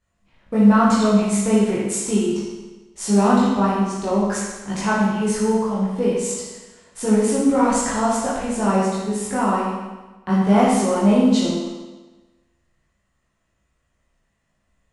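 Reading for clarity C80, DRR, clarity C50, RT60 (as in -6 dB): 2.5 dB, -8.5 dB, -1.0 dB, 1.2 s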